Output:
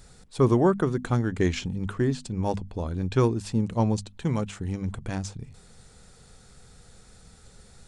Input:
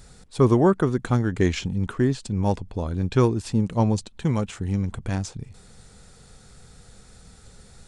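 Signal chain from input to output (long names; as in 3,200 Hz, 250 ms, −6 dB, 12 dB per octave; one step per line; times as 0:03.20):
mains-hum notches 50/100/150/200/250 Hz
level −2.5 dB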